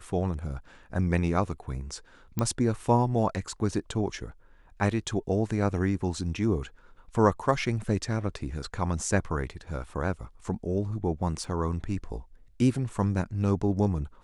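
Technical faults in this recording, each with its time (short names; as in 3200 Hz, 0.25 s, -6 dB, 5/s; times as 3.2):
2.39 pop -14 dBFS
11.44 gap 3.8 ms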